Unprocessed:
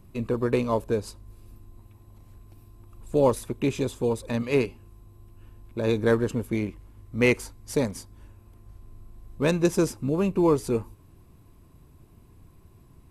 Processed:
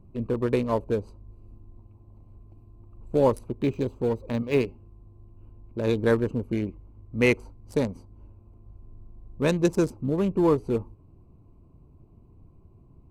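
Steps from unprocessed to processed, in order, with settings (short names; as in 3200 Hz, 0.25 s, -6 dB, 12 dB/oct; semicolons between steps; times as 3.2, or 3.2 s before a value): Wiener smoothing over 25 samples; 3.47–4.62 decimation joined by straight lines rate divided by 2×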